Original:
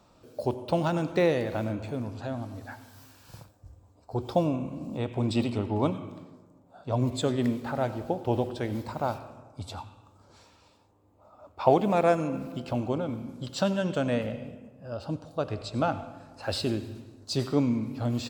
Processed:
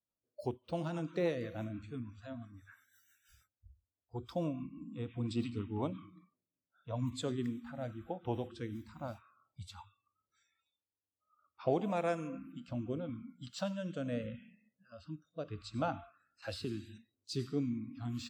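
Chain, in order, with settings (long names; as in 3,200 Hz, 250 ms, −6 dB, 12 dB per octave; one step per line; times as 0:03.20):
noise reduction from a noise print of the clip's start 29 dB
rotating-speaker cabinet horn 6 Hz, later 0.8 Hz, at 0:05.67
0:16.42–0:16.98: multiband upward and downward compressor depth 70%
level −8 dB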